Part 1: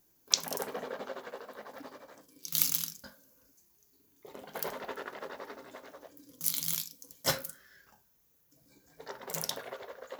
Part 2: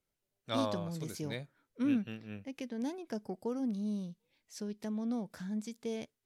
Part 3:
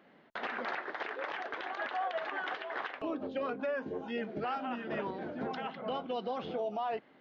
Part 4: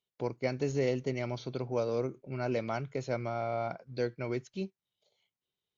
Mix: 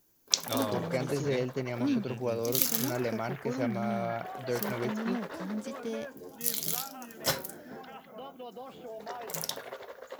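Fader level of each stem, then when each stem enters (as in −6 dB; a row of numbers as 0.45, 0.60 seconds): +0.5, +1.0, −8.0, −0.5 decibels; 0.00, 0.00, 2.30, 0.50 seconds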